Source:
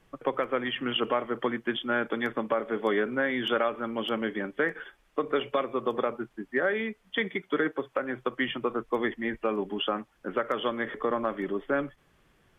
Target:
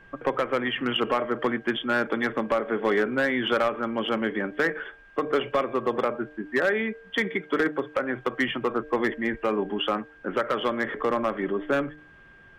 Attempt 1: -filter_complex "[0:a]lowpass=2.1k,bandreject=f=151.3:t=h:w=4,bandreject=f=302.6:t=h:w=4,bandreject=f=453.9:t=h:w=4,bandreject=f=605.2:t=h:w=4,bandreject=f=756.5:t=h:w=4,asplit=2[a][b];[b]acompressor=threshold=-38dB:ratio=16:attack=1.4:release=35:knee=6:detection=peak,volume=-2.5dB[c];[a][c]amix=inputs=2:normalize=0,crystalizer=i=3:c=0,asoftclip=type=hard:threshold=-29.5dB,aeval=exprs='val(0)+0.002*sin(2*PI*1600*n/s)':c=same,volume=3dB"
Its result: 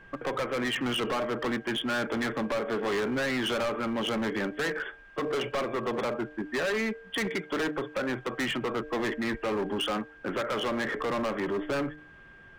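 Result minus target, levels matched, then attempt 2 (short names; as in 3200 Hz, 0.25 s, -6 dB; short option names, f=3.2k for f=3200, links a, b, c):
hard clip: distortion +12 dB; compressor: peak gain reduction -6.5 dB
-filter_complex "[0:a]lowpass=2.1k,bandreject=f=151.3:t=h:w=4,bandreject=f=302.6:t=h:w=4,bandreject=f=453.9:t=h:w=4,bandreject=f=605.2:t=h:w=4,bandreject=f=756.5:t=h:w=4,asplit=2[a][b];[b]acompressor=threshold=-45dB:ratio=16:attack=1.4:release=35:knee=6:detection=peak,volume=-2.5dB[c];[a][c]amix=inputs=2:normalize=0,crystalizer=i=3:c=0,asoftclip=type=hard:threshold=-19dB,aeval=exprs='val(0)+0.002*sin(2*PI*1600*n/s)':c=same,volume=3dB"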